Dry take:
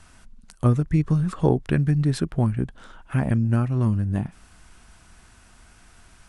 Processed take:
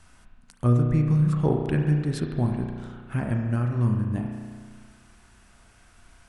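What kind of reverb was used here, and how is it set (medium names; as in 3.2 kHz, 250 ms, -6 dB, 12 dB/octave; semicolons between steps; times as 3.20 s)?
spring tank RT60 1.8 s, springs 33 ms, chirp 45 ms, DRR 2.5 dB; trim -4.5 dB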